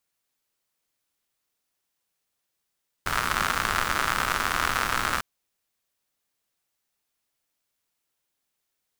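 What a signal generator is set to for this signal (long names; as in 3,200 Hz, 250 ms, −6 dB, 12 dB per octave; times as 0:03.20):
rain-like ticks over hiss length 2.15 s, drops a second 120, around 1,300 Hz, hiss −7 dB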